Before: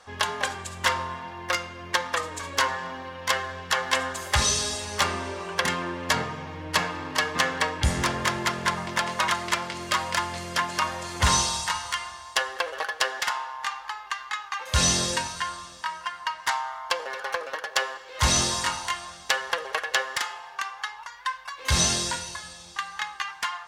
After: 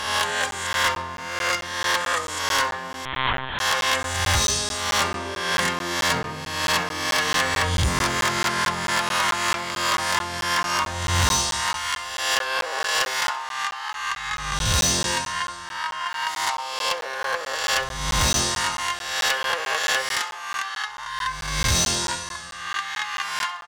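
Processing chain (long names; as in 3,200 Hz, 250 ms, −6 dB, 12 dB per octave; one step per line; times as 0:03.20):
peak hold with a rise ahead of every peak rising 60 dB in 1.06 s
0:16.27–0:16.93: parametric band 1,600 Hz −7.5 dB 0.43 octaves
gain into a clipping stage and back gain 16 dB
on a send: repeating echo 66 ms, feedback 42%, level −19 dB
0:03.05–0:03.59: on the sum: linear-prediction vocoder at 8 kHz pitch kept
regular buffer underruns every 0.22 s, samples 512, zero, from 0:00.51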